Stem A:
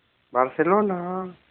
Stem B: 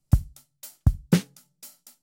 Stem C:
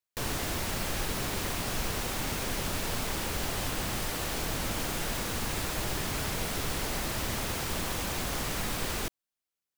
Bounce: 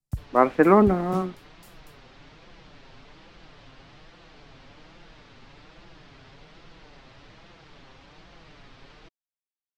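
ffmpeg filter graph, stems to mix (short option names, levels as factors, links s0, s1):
-filter_complex "[0:a]equalizer=f=250:t=o:w=0.72:g=8.5,aeval=exprs='sgn(val(0))*max(abs(val(0))-0.00335,0)':c=same,volume=1.19[s0];[1:a]acrossover=split=220[s1][s2];[s2]acompressor=threshold=0.0501:ratio=6[s3];[s1][s3]amix=inputs=2:normalize=0,volume=0.251[s4];[2:a]lowpass=f=4600:w=0.5412,lowpass=f=4600:w=1.3066,flanger=delay=5.7:depth=2:regen=-5:speed=1.2:shape=triangular,volume=0.211[s5];[s0][s4][s5]amix=inputs=3:normalize=0"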